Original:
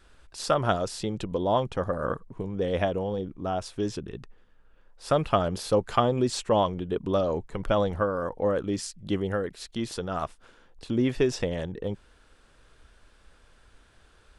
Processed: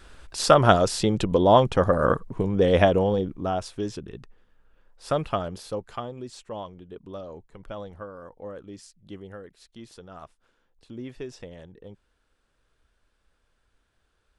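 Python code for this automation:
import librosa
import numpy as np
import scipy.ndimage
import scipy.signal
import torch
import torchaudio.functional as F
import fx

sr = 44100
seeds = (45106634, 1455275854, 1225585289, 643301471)

y = fx.gain(x, sr, db=fx.line((3.02, 8.0), (3.89, -1.5), (5.17, -1.5), (6.16, -13.0)))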